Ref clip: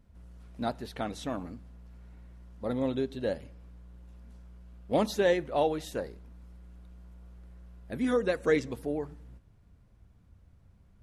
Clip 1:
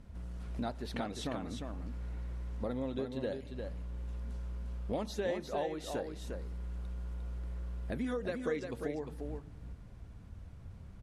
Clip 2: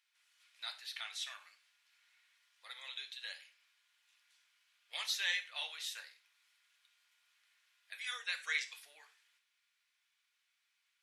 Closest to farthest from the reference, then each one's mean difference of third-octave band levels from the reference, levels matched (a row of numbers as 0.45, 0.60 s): 1, 2; 9.5, 14.5 dB